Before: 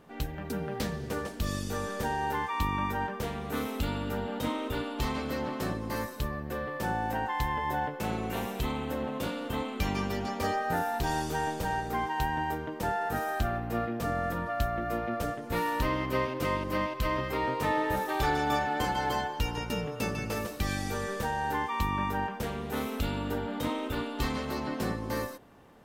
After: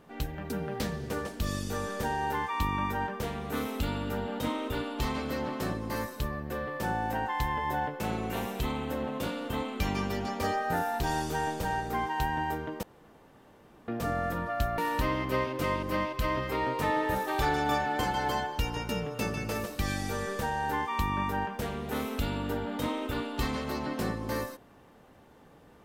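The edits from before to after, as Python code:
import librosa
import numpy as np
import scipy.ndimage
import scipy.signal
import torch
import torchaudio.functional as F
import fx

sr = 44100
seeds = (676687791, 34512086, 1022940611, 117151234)

y = fx.edit(x, sr, fx.room_tone_fill(start_s=12.83, length_s=1.05),
    fx.cut(start_s=14.78, length_s=0.81), tone=tone)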